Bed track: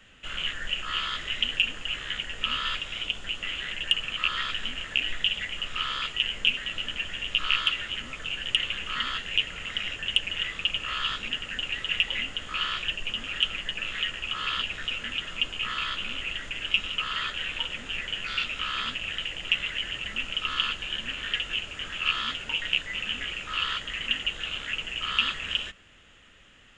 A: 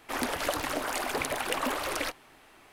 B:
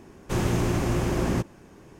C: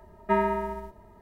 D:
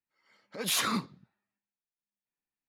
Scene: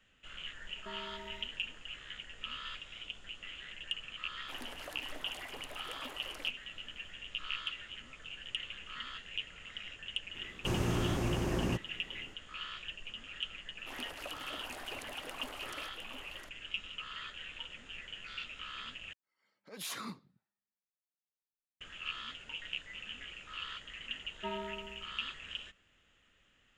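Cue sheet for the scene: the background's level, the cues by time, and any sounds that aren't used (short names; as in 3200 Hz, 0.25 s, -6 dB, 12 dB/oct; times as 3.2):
bed track -14 dB
0.57 add C -14 dB + compressor, threshold -29 dBFS
4.39 add A -17.5 dB
10.35 add B -8 dB
13.77 add A -16 dB + echo 0.708 s -6.5 dB
19.13 replace with D -12.5 dB
24.14 add C -16.5 dB + echo with dull and thin repeats by turns 0.104 s, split 940 Hz, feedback 50%, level -12.5 dB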